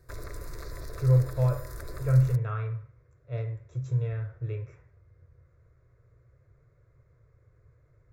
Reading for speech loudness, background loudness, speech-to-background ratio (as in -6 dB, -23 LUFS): -28.5 LUFS, -43.0 LUFS, 14.5 dB